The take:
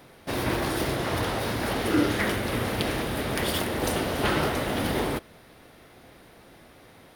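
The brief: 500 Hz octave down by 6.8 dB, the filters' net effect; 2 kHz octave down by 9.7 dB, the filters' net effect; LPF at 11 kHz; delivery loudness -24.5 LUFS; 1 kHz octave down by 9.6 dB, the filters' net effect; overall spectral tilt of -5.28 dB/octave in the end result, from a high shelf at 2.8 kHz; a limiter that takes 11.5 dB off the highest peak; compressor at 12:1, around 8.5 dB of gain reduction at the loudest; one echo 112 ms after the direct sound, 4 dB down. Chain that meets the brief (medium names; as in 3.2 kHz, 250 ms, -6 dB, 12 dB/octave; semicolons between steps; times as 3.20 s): low-pass 11 kHz; peaking EQ 500 Hz -6.5 dB; peaking EQ 1 kHz -8 dB; peaking EQ 2 kHz -7.5 dB; treble shelf 2.8 kHz -4.5 dB; compression 12:1, threshold -30 dBFS; peak limiter -30 dBFS; delay 112 ms -4 dB; trim +13 dB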